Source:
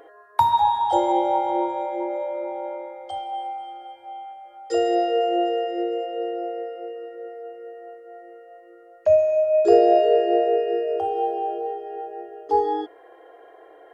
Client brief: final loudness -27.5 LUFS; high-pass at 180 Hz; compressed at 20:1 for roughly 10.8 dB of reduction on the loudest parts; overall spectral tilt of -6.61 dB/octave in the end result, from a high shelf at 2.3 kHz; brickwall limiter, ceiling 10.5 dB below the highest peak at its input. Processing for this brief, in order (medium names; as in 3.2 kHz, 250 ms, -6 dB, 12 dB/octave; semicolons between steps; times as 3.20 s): high-pass 180 Hz; treble shelf 2.3 kHz +7 dB; compression 20:1, threshold -20 dBFS; trim +1 dB; peak limiter -18 dBFS